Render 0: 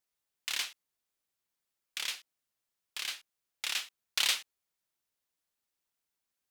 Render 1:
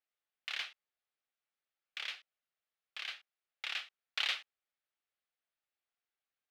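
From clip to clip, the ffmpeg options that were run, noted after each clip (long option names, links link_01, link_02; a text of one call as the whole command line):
ffmpeg -i in.wav -filter_complex "[0:a]acrossover=split=480 3900:gain=0.251 1 0.0631[link_01][link_02][link_03];[link_01][link_02][link_03]amix=inputs=3:normalize=0,bandreject=frequency=980:width=5.7,volume=-1.5dB" out.wav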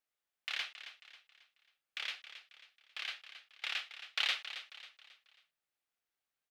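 ffmpeg -i in.wav -af "aecho=1:1:271|542|813|1084:0.251|0.103|0.0422|0.0173,volume=1dB" out.wav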